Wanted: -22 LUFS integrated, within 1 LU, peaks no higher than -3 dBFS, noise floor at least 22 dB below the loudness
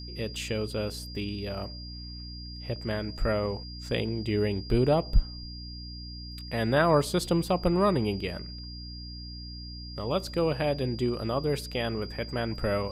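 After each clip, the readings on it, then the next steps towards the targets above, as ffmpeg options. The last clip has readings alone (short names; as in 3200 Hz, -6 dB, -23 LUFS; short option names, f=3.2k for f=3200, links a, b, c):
hum 60 Hz; harmonics up to 300 Hz; hum level -39 dBFS; steady tone 4800 Hz; tone level -43 dBFS; loudness -29.0 LUFS; peak -10.0 dBFS; loudness target -22.0 LUFS
-> -af "bandreject=f=60:t=h:w=4,bandreject=f=120:t=h:w=4,bandreject=f=180:t=h:w=4,bandreject=f=240:t=h:w=4,bandreject=f=300:t=h:w=4"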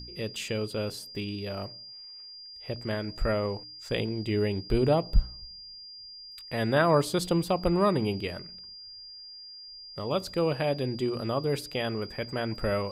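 hum none; steady tone 4800 Hz; tone level -43 dBFS
-> -af "bandreject=f=4.8k:w=30"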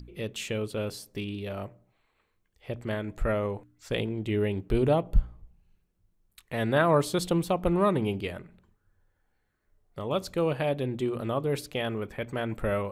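steady tone none; loudness -29.5 LUFS; peak -11.0 dBFS; loudness target -22.0 LUFS
-> -af "volume=7.5dB"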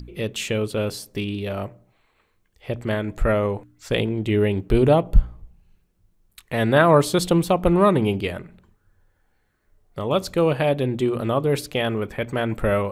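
loudness -22.0 LUFS; peak -3.5 dBFS; noise floor -66 dBFS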